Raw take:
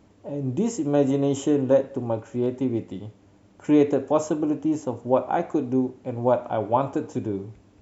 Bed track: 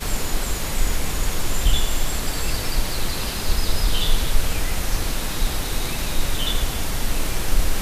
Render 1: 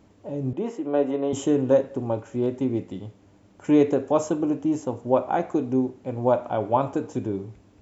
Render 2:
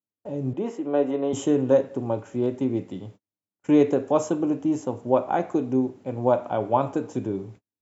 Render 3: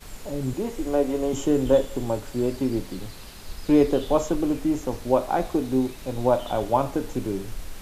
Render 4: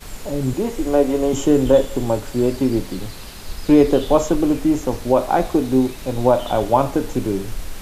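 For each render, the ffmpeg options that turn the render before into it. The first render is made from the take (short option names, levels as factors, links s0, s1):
-filter_complex "[0:a]asettb=1/sr,asplit=3[s0][s1][s2];[s0]atrim=end=0.534[s3];[s1]atrim=start=0.53:end=1.33,asetpts=PTS-STARTPTS,afade=t=in:d=0.004:c=qsin,afade=t=out:st=0.796:d=0.004:c=qsin,highpass=330,lowpass=2600[s4];[s2]atrim=start=1.326[s5];[s3][s4]acrossfade=d=0.004:c1=hsin:c2=qsin[s6];[s6][s5]acrossfade=d=0.004:c1=qsin:c2=hsin"
-af "highpass=f=97:w=0.5412,highpass=f=97:w=1.3066,agate=range=0.00708:threshold=0.00631:ratio=16:detection=peak"
-filter_complex "[1:a]volume=0.15[s0];[0:a][s0]amix=inputs=2:normalize=0"
-af "volume=2.11,alimiter=limit=0.708:level=0:latency=1"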